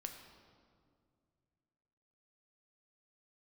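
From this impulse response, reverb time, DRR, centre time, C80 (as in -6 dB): 2.2 s, 4.0 dB, 36 ms, 7.5 dB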